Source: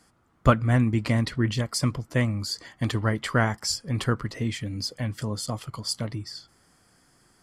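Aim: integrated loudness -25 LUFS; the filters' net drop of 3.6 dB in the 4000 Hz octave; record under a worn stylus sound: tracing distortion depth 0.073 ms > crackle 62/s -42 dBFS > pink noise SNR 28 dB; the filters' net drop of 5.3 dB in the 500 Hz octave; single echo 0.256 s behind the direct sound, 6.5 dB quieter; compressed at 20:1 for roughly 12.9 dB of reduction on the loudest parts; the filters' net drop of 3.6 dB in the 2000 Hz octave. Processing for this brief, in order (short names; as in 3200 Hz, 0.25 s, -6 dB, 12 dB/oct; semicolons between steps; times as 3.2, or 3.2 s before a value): bell 500 Hz -6.5 dB; bell 2000 Hz -3.5 dB; bell 4000 Hz -4 dB; compressor 20:1, threshold -26 dBFS; echo 0.256 s -6.5 dB; tracing distortion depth 0.073 ms; crackle 62/s -42 dBFS; pink noise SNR 28 dB; gain +7 dB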